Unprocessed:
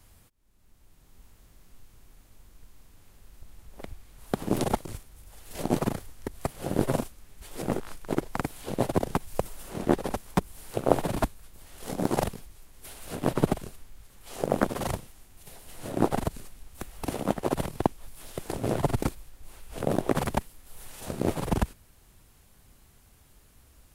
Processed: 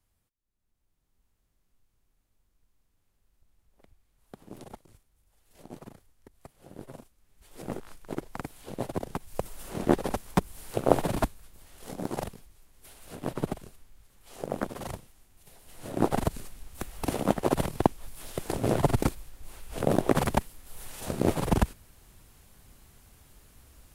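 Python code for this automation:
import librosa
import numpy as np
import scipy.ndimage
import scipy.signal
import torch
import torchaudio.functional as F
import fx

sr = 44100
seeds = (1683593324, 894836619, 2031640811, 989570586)

y = fx.gain(x, sr, db=fx.line((7.04, -19.0), (7.68, -7.0), (9.18, -7.0), (9.65, 0.5), (11.11, 0.5), (12.08, -7.0), (15.55, -7.0), (16.28, 2.0)))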